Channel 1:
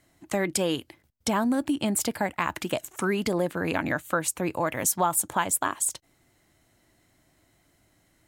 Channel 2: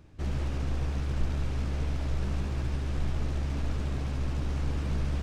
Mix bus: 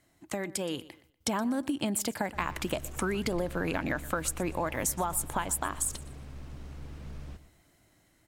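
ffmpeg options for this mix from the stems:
-filter_complex "[0:a]acompressor=threshold=-27dB:ratio=6,volume=-3.5dB,asplit=2[a][b];[b]volume=-19dB[c];[1:a]adelay=2150,volume=-16dB,asplit=2[d][e];[e]volume=-13.5dB[f];[c][f]amix=inputs=2:normalize=0,aecho=0:1:121|242|363|484:1|0.28|0.0784|0.022[g];[a][d][g]amix=inputs=3:normalize=0,dynaudnorm=f=220:g=7:m=3.5dB"

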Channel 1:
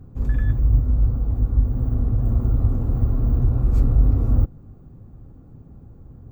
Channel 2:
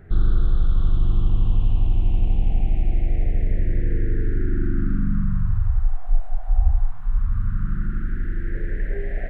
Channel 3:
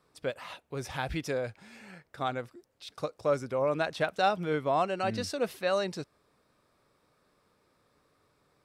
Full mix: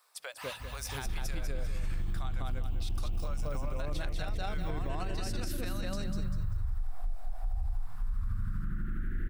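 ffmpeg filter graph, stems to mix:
-filter_complex "[0:a]tiltshelf=f=970:g=-4.5,acompressor=threshold=-28dB:ratio=6,equalizer=f=78:t=o:w=2.9:g=11.5,adelay=250,volume=2dB,afade=t=out:st=1.11:d=0.33:silence=0.266073,afade=t=in:st=2.75:d=0.58:silence=0.237137,asplit=2[a][b];[b]volume=-10dB[c];[1:a]acompressor=threshold=-17dB:ratio=6,adelay=950,volume=-6dB[d];[2:a]asubboost=boost=3.5:cutoff=240,volume=1.5dB,asplit=2[e][f];[f]volume=-9.5dB[g];[a][e]amix=inputs=2:normalize=0,highpass=f=690:w=0.5412,highpass=f=690:w=1.3066,acompressor=threshold=-40dB:ratio=6,volume=0dB[h];[c][g]amix=inputs=2:normalize=0,aecho=0:1:196|392|588|784:1|0.31|0.0961|0.0298[i];[d][h][i]amix=inputs=3:normalize=0,aemphasis=mode=production:type=50kf,alimiter=level_in=1.5dB:limit=-24dB:level=0:latency=1:release=52,volume=-1.5dB"

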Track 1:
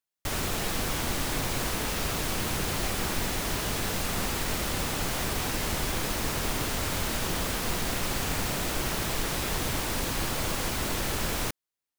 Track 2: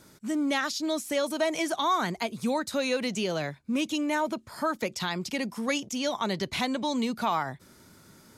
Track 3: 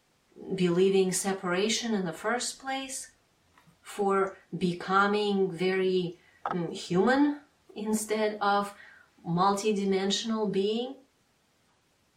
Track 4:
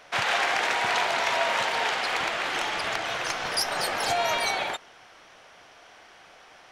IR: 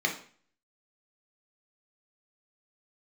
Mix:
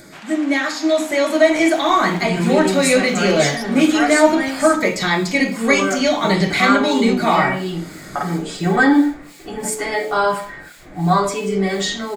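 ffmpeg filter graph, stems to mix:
-filter_complex "[0:a]acrossover=split=2100[a][b];[a]aeval=exprs='val(0)*(1-1/2+1/2*cos(2*PI*2.9*n/s))':c=same[c];[b]aeval=exprs='val(0)*(1-1/2-1/2*cos(2*PI*2.9*n/s))':c=same[d];[c][d]amix=inputs=2:normalize=0,adelay=1250,volume=-18dB,asplit=2[e][f];[f]volume=-5.5dB[g];[1:a]acompressor=mode=upward:threshold=-41dB:ratio=2.5,volume=2.5dB,asplit=2[h][i];[i]volume=-4dB[j];[2:a]aecho=1:1:7:0.88,adelay=1700,volume=0dB,asplit=2[k][l];[l]volume=-10.5dB[m];[3:a]volume=-13.5dB[n];[4:a]atrim=start_sample=2205[o];[g][j][m]amix=inputs=3:normalize=0[p];[p][o]afir=irnorm=-1:irlink=0[q];[e][h][k][n][q]amix=inputs=5:normalize=0,equalizer=f=98:t=o:w=1.2:g=-8,dynaudnorm=f=190:g=11:m=9.5dB"

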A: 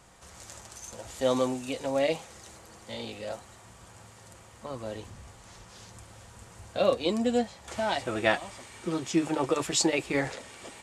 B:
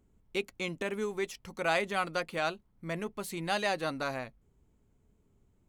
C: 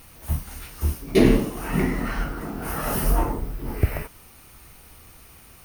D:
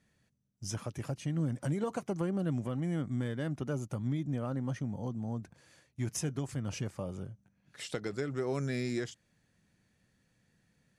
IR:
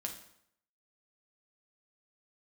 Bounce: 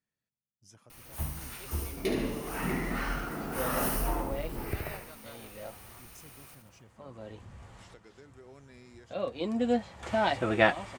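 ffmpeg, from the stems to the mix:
-filter_complex "[0:a]bass=f=250:g=8,treble=f=4k:g=-11,adelay=2350,volume=2.5dB[a];[1:a]adelay=1250,volume=-18.5dB[b];[2:a]alimiter=limit=-15dB:level=0:latency=1:release=313,adelay=900,volume=-3.5dB,asplit=2[c][d];[d]volume=-6dB[e];[3:a]volume=-17dB,asplit=2[f][g];[g]apad=whole_len=581111[h];[a][h]sidechaincompress=threshold=-58dB:ratio=16:attack=6.2:release=1000[i];[e]aecho=0:1:72|144|216|288|360|432|504:1|0.48|0.23|0.111|0.0531|0.0255|0.0122[j];[i][b][c][f][j]amix=inputs=5:normalize=0,lowshelf=f=230:g=-7"

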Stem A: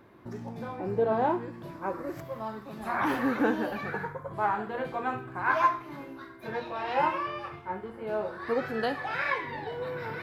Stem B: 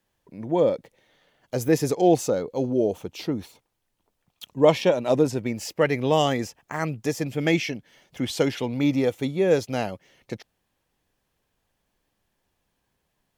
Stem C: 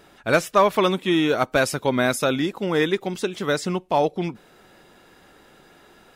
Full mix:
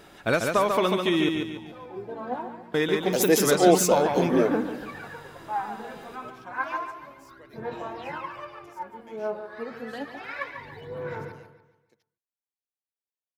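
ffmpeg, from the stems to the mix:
-filter_complex "[0:a]aphaser=in_gain=1:out_gain=1:delay=4.8:decay=0.7:speed=0.3:type=sinusoidal,adelay=1100,volume=-8.5dB,asplit=2[a][b];[b]volume=-9.5dB[c];[1:a]highpass=350,highshelf=f=6.5k:g=11.5,adelay=1600,volume=2dB[d];[2:a]acompressor=threshold=-23dB:ratio=3,volume=1.5dB,asplit=3[e][f][g];[e]atrim=end=1.29,asetpts=PTS-STARTPTS,afade=t=out:st=1.286:d=0.004:c=hsin[h];[f]atrim=start=1.29:end=2.74,asetpts=PTS-STARTPTS,volume=0[i];[g]atrim=start=2.74,asetpts=PTS-STARTPTS,afade=t=in:d=0.004:c=hsin[j];[h][i][j]concat=n=3:v=0:a=1,asplit=3[k][l][m];[l]volume=-4.5dB[n];[m]apad=whole_len=660518[o];[d][o]sidechaingate=range=-33dB:threshold=-45dB:ratio=16:detection=peak[p];[c][n]amix=inputs=2:normalize=0,aecho=0:1:143|286|429|572|715|858:1|0.4|0.16|0.064|0.0256|0.0102[q];[a][p][k][q]amix=inputs=4:normalize=0"

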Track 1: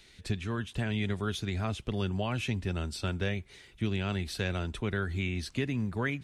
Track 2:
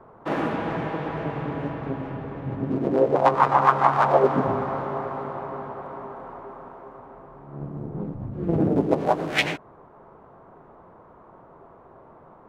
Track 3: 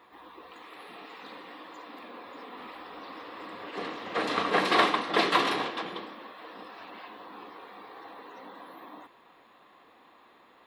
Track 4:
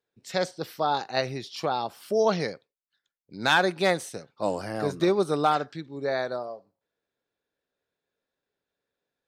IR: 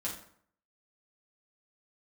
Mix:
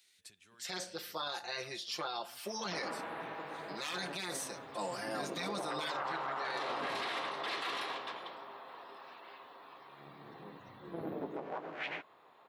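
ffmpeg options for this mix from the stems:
-filter_complex "[0:a]acompressor=threshold=-38dB:ratio=6,aemphasis=mode=production:type=50fm,volume=-14dB,asplit=2[a][b];[b]volume=-23.5dB[c];[1:a]lowpass=2.5k,adelay=2450,volume=-8dB[d];[2:a]adelay=2300,volume=-6.5dB[e];[3:a]aecho=1:1:5.7:0.91,adelay=350,volume=-4dB,asplit=2[f][g];[g]volume=-15dB[h];[4:a]atrim=start_sample=2205[i];[c][h]amix=inputs=2:normalize=0[j];[j][i]afir=irnorm=-1:irlink=0[k];[a][d][e][f][k]amix=inputs=5:normalize=0,highpass=f=1.1k:p=1,afftfilt=real='re*lt(hypot(re,im),0.158)':imag='im*lt(hypot(re,im),0.158)':win_size=1024:overlap=0.75,alimiter=level_in=5dB:limit=-24dB:level=0:latency=1:release=16,volume=-5dB"

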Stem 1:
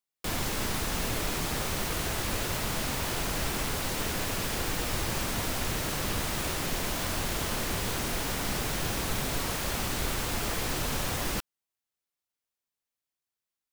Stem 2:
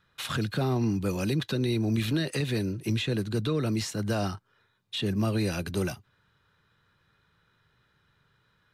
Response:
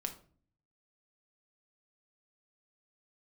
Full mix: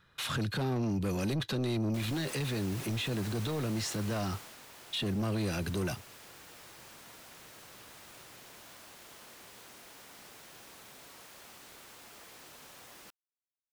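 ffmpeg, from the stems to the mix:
-filter_complex "[0:a]highpass=f=450:p=1,adelay=1700,volume=-10dB,afade=t=out:st=4.07:d=0.5:silence=0.354813[a];[1:a]asoftclip=type=tanh:threshold=-27dB,volume=3dB[b];[a][b]amix=inputs=2:normalize=0,alimiter=level_in=4dB:limit=-24dB:level=0:latency=1:release=16,volume=-4dB"

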